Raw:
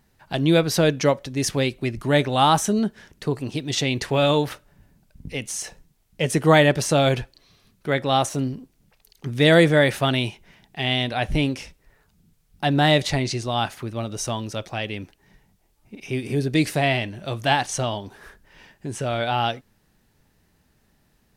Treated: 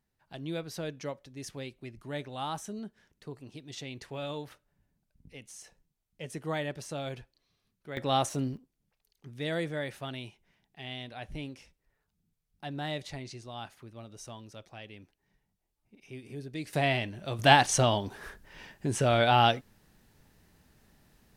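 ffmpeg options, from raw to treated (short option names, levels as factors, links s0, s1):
-af "asetnsamples=n=441:p=0,asendcmd='7.97 volume volume -7dB;8.57 volume volume -18dB;16.73 volume volume -6.5dB;17.39 volume volume 0.5dB',volume=0.119"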